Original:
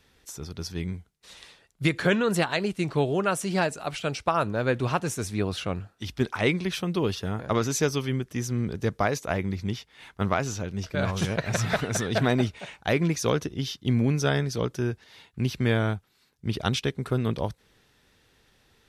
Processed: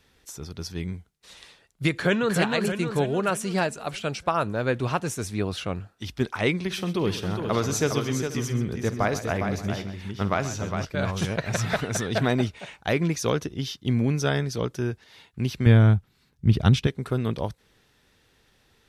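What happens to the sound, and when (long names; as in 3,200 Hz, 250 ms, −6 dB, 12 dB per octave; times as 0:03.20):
0:01.91–0:02.37: delay throw 310 ms, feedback 55%, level −4 dB
0:06.54–0:10.85: multi-tap delay 50/130/409/484/578 ms −14.5/−14/−6.5/−18/−19.5 dB
0:15.66–0:16.87: bass and treble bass +12 dB, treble −3 dB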